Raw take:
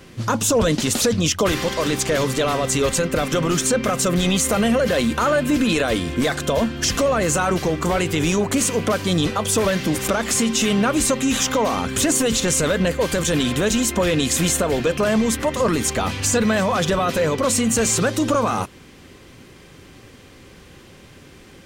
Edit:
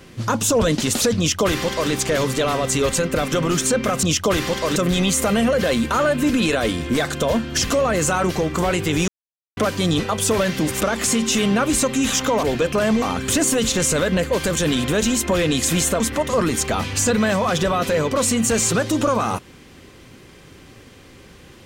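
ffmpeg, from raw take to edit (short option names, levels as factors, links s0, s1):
-filter_complex "[0:a]asplit=8[s0][s1][s2][s3][s4][s5][s6][s7];[s0]atrim=end=4.032[s8];[s1]atrim=start=1.178:end=1.912[s9];[s2]atrim=start=4.028:end=8.35,asetpts=PTS-STARTPTS,afade=t=out:st=4.318:d=0.004:c=hsin[s10];[s3]atrim=start=8.35:end=8.84,asetpts=PTS-STARTPTS,volume=0[s11];[s4]atrim=start=8.84:end=11.702,asetpts=PTS-STARTPTS,afade=t=in:d=0.004:c=hsin[s12];[s5]atrim=start=14.678:end=15.272[s13];[s6]atrim=start=11.698:end=14.682[s14];[s7]atrim=start=15.268[s15];[s8][s9]acrossfade=d=0.004:c1=hsin:c2=hsin[s16];[s10][s11][s12]concat=n=3:v=0:a=1[s17];[s16][s17]acrossfade=d=0.004:c1=hsin:c2=hsin[s18];[s18][s13]acrossfade=d=0.004:c1=hsin:c2=hsin[s19];[s19][s14]acrossfade=d=0.004:c1=hsin:c2=hsin[s20];[s20][s15]acrossfade=d=0.004:c1=hsin:c2=hsin"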